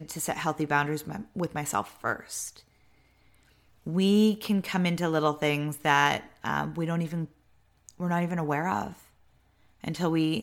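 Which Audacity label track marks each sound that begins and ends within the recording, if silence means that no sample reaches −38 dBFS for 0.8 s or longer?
3.860000	8.930000	sound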